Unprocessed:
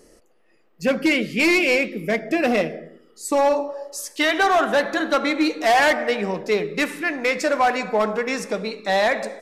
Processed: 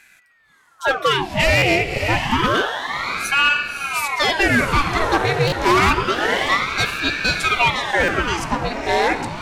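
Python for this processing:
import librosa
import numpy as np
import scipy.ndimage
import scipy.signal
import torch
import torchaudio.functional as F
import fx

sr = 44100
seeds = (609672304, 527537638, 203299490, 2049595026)

y = fx.echo_diffused(x, sr, ms=586, feedback_pct=42, wet_db=-6.0)
y = fx.buffer_glitch(y, sr, at_s=(1.57, 5.47, 8.03), block=256, repeats=8)
y = fx.ring_lfo(y, sr, carrier_hz=1100.0, swing_pct=85, hz=0.28)
y = F.gain(torch.from_numpy(y), 4.0).numpy()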